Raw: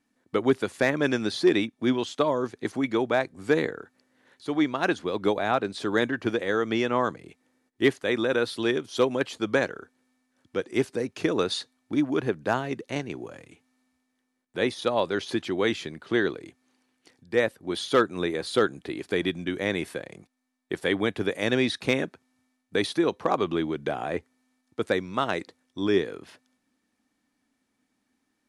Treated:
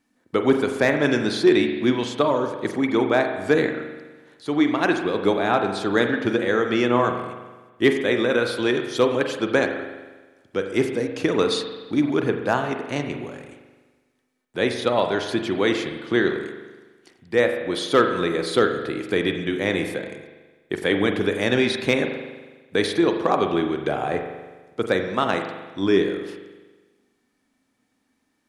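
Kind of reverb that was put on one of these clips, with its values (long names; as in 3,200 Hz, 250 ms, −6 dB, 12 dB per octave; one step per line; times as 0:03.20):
spring reverb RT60 1.3 s, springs 41 ms, chirp 50 ms, DRR 5 dB
level +3.5 dB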